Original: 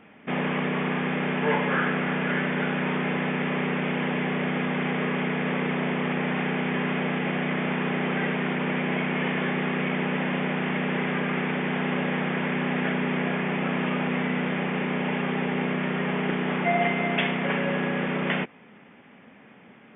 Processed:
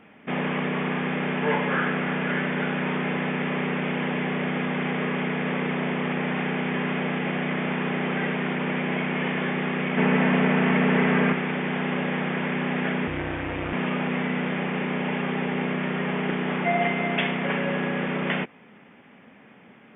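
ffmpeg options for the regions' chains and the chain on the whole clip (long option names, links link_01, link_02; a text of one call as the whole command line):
ffmpeg -i in.wav -filter_complex "[0:a]asettb=1/sr,asplit=3[link_01][link_02][link_03];[link_01]atrim=end=9.974[link_04];[link_02]atrim=start=9.97:end=11.33,asetpts=PTS-STARTPTS,afade=type=in:duration=0.004:curve=qsin,afade=type=out:start_time=1.356:duration=0.004:curve=qsin,aecho=1:1:4.5:0.3,atrim=end_sample=59976,acontrast=37,lowpass=2900[link_05];[link_03]atrim=start=11.326[link_06];[link_04][link_05]acrossfade=duration=0.004:curve1=hsin:curve2=qsin[link_07];[link_07][link_06]acrossfade=duration=0.004:curve1=qsin:curve2=hsin,asettb=1/sr,asplit=3[link_08][link_09][link_10];[link_08]atrim=end=13.074[link_11];[link_09]atrim=start=13.07:end=13.73,asetpts=PTS-STARTPTS,afade=type=in:duration=0.004:curve=qsin,afade=type=out:start_time=0.656:duration=0.004:curve=qsin,aeval=exprs='val(0)*sin(2*PI*97*n/s)':channel_layout=same,asplit=2[link_12][link_13];[link_13]adelay=38,volume=-13dB[link_14];[link_12][link_14]amix=inputs=2:normalize=0,atrim=end_sample=29106[link_15];[link_10]atrim=start=13.726[link_16];[link_11][link_15]acrossfade=duration=0.004:curve1=hsin:curve2=qsin[link_17];[link_17][link_16]acrossfade=duration=0.004:curve1=qsin:curve2=hsin" out.wav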